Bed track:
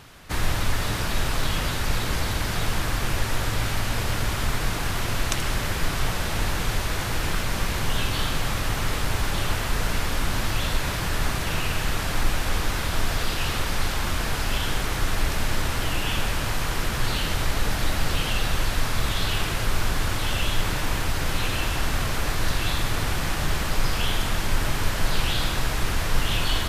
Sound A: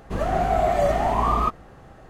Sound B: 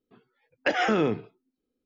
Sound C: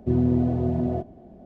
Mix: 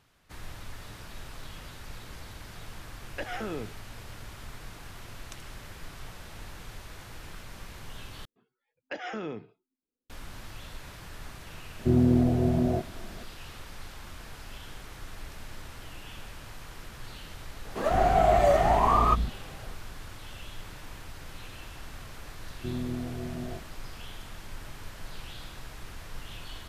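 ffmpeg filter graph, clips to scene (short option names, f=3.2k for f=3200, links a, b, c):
-filter_complex "[2:a]asplit=2[a][b];[3:a]asplit=2[c][d];[0:a]volume=-18.5dB[e];[c]highpass=45[f];[1:a]acrossover=split=220[g][h];[g]adelay=150[i];[i][h]amix=inputs=2:normalize=0[j];[e]asplit=2[k][l];[k]atrim=end=8.254[m];[b]atrim=end=1.85,asetpts=PTS-STARTPTS,volume=-12.5dB[n];[l]atrim=start=10.096[o];[a]atrim=end=1.85,asetpts=PTS-STARTPTS,volume=-12dB,afade=t=in:d=0.004:c=hsin,afade=t=out:st=1.846:d=0.004:c=hsin,adelay=2520[p];[f]atrim=end=1.45,asetpts=PTS-STARTPTS,volume=-0.5dB,afade=t=in:d=0.004:c=hsin,afade=t=out:st=1.446:d=0.004:c=hsin,adelay=11790[q];[j]atrim=end=2.09,asetpts=PTS-STARTPTS,volume=-0.5dB,afade=t=in:d=0.004:c=hsin,afade=t=out:st=2.086:d=0.004:c=hsin,adelay=17650[r];[d]atrim=end=1.45,asetpts=PTS-STARTPTS,volume=-12.5dB,afade=t=in:d=0.004:c=hsin,afade=t=out:st=1.446:d=0.004:c=hsin,adelay=22570[s];[m][n]acrossfade=d=0.004:c1=hsin:c2=hsin[t];[t][o]acrossfade=d=0.004:c1=hsin:c2=hsin[u];[u][p][q][r][s]amix=inputs=5:normalize=0"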